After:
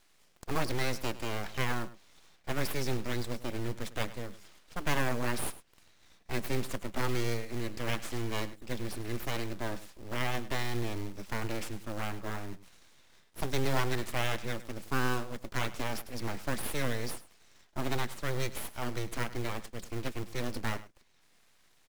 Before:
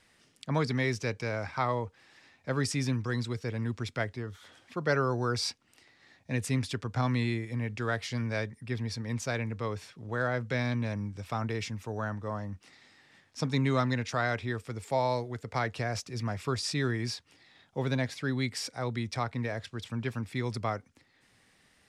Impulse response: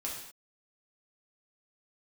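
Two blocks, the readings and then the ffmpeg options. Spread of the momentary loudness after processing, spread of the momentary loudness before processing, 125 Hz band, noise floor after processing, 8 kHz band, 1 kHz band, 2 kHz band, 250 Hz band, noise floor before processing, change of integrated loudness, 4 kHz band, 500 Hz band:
9 LU, 8 LU, -5.5 dB, -65 dBFS, 0.0 dB, -3.0 dB, -2.0 dB, -4.5 dB, -66 dBFS, -3.5 dB, -1.5 dB, -3.5 dB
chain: -af "aeval=exprs='abs(val(0))':c=same,acrusher=bits=4:mode=log:mix=0:aa=0.000001,aecho=1:1:102:0.15"

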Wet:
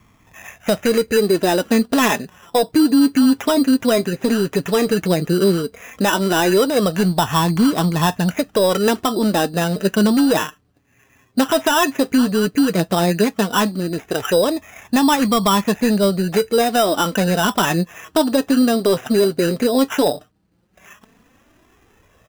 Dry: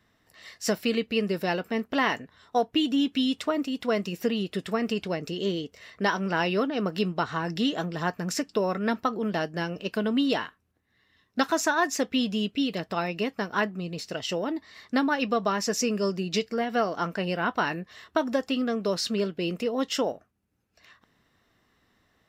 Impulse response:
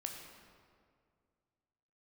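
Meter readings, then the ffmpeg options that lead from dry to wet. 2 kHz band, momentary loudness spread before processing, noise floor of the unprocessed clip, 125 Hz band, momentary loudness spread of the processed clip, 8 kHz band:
+6.5 dB, 6 LU, -69 dBFS, +12.5 dB, 6 LU, +10.5 dB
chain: -af "highshelf=f=2.6k:g=-11,aresample=8000,asoftclip=type=tanh:threshold=-17.5dB,aresample=44100,flanger=delay=0.9:depth=6.8:regen=25:speed=0.13:shape=sinusoidal,acrusher=samples=10:mix=1:aa=0.000001,alimiter=level_in=25dB:limit=-1dB:release=50:level=0:latency=1,volume=-7dB"

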